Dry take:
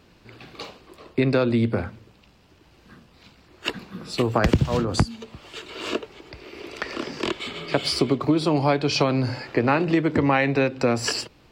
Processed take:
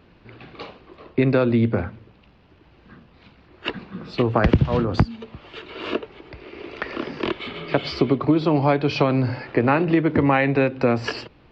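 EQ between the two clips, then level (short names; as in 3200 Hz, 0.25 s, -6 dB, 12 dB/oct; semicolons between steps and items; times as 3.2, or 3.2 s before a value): air absorption 200 m; tape spacing loss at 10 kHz 21 dB; high shelf 2100 Hz +8.5 dB; +3.0 dB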